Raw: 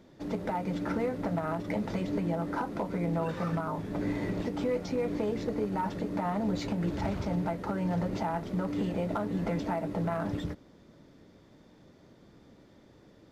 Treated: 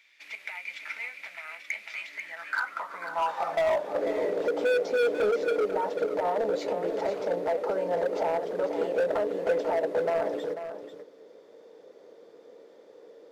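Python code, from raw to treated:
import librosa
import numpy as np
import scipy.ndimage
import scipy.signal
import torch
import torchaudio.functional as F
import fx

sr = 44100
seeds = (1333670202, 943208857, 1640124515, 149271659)

y = fx.dynamic_eq(x, sr, hz=650.0, q=4.3, threshold_db=-47.0, ratio=4.0, max_db=4)
y = fx.rider(y, sr, range_db=3, speed_s=2.0)
y = fx.filter_sweep_highpass(y, sr, from_hz=2300.0, to_hz=470.0, start_s=2.05, end_s=4.09, q=7.8)
y = np.clip(y, -10.0 ** (-21.0 / 20.0), 10.0 ** (-21.0 / 20.0))
y = y + 10.0 ** (-10.0 / 20.0) * np.pad(y, (int(492 * sr / 1000.0), 0))[:len(y)]
y = F.gain(torch.from_numpy(y), -1.0).numpy()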